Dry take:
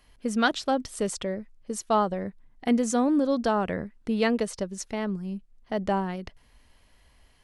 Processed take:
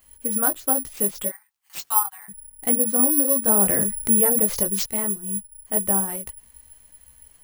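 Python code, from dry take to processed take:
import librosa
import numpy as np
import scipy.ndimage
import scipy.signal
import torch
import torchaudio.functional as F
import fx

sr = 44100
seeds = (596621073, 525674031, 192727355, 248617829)

y = fx.steep_highpass(x, sr, hz=770.0, slope=96, at=(1.28, 2.28), fade=0.02)
y = fx.env_lowpass_down(y, sr, base_hz=1200.0, full_db=-20.0)
y = fx.chorus_voices(y, sr, voices=6, hz=1.1, base_ms=17, depth_ms=3.0, mix_pct=40)
y = (np.kron(y[::4], np.eye(4)[0]) * 4)[:len(y)]
y = fx.env_flatten(y, sr, amount_pct=50, at=(3.51, 4.86))
y = F.gain(torch.from_numpy(y), 1.5).numpy()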